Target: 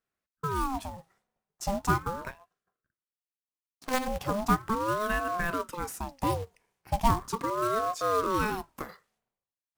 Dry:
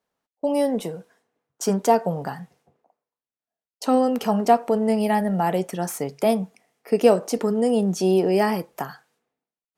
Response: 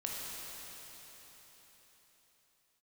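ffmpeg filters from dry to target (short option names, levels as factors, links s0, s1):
-filter_complex "[0:a]acrusher=bits=4:mode=log:mix=0:aa=0.000001,asplit=3[s0][s1][s2];[s0]afade=t=out:st=2.3:d=0.02[s3];[s1]aeval=exprs='0.422*(cos(1*acos(clip(val(0)/0.422,-1,1)))-cos(1*PI/2))+0.106*(cos(3*acos(clip(val(0)/0.422,-1,1)))-cos(3*PI/2))+0.0596*(cos(6*acos(clip(val(0)/0.422,-1,1)))-cos(6*PI/2))+0.0119*(cos(8*acos(clip(val(0)/0.422,-1,1)))-cos(8*PI/2))':c=same,afade=t=in:st=2.3:d=0.02,afade=t=out:st=4.06:d=0.02[s4];[s2]afade=t=in:st=4.06:d=0.02[s5];[s3][s4][s5]amix=inputs=3:normalize=0,aeval=exprs='val(0)*sin(2*PI*580*n/s+580*0.55/0.38*sin(2*PI*0.38*n/s))':c=same,volume=0.531"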